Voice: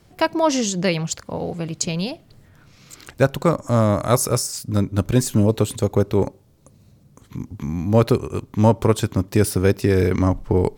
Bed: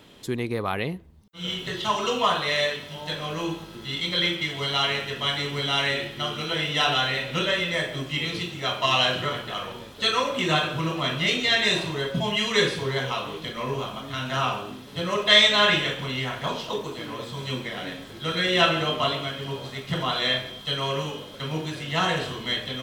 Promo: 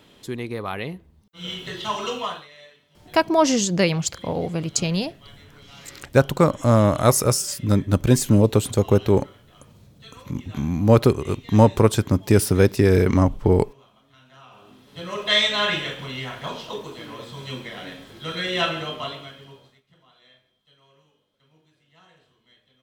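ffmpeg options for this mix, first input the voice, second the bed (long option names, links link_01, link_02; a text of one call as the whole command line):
ffmpeg -i stem1.wav -i stem2.wav -filter_complex "[0:a]adelay=2950,volume=1dB[link_01];[1:a]volume=18.5dB,afade=type=out:start_time=2.08:duration=0.4:silence=0.0841395,afade=type=in:start_time=14.49:duration=0.81:silence=0.0944061,afade=type=out:start_time=18.6:duration=1.22:silence=0.0354813[link_02];[link_01][link_02]amix=inputs=2:normalize=0" out.wav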